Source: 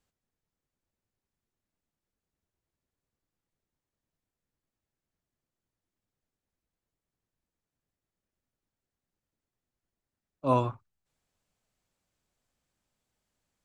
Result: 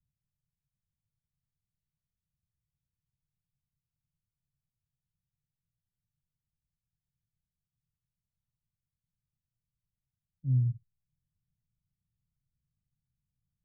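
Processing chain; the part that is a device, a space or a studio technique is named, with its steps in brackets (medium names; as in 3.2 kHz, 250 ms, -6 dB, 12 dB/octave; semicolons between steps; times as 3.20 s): the neighbour's flat through the wall (low-pass 160 Hz 24 dB/octave; peaking EQ 140 Hz +8 dB 0.88 oct)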